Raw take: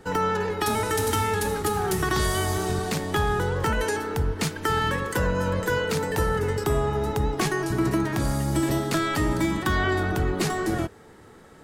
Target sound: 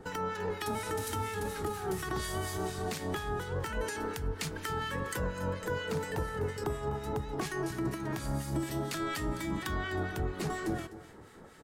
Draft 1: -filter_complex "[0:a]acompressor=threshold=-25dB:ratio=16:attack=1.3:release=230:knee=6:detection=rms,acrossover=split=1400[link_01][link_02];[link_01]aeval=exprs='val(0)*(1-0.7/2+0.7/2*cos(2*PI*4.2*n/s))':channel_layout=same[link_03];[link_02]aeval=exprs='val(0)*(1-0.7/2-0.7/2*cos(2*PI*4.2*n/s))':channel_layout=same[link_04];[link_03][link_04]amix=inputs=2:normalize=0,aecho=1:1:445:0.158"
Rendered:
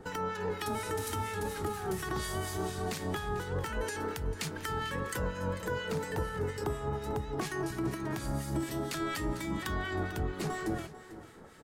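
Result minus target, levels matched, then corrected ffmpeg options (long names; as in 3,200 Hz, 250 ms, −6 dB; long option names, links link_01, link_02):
echo 193 ms late
-filter_complex "[0:a]acompressor=threshold=-25dB:ratio=16:attack=1.3:release=230:knee=6:detection=rms,acrossover=split=1400[link_01][link_02];[link_01]aeval=exprs='val(0)*(1-0.7/2+0.7/2*cos(2*PI*4.2*n/s))':channel_layout=same[link_03];[link_02]aeval=exprs='val(0)*(1-0.7/2-0.7/2*cos(2*PI*4.2*n/s))':channel_layout=same[link_04];[link_03][link_04]amix=inputs=2:normalize=0,aecho=1:1:252:0.158"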